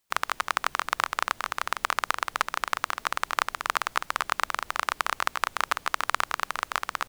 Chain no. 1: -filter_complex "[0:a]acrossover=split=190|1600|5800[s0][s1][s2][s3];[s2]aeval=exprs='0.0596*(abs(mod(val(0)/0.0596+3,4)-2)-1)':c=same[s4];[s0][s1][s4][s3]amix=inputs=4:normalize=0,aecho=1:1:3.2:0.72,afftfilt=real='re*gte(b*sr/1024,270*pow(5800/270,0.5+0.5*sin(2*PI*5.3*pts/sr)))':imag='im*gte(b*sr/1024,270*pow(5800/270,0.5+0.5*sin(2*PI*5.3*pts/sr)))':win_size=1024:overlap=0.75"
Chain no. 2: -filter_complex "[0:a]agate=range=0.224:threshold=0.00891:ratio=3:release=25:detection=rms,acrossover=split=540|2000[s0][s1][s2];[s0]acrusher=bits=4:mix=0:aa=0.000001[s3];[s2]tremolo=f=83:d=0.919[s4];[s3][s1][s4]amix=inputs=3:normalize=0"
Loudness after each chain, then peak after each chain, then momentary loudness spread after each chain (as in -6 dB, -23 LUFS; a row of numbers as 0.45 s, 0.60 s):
-31.5 LUFS, -30.0 LUFS; -9.0 dBFS, -6.0 dBFS; 3 LU, 3 LU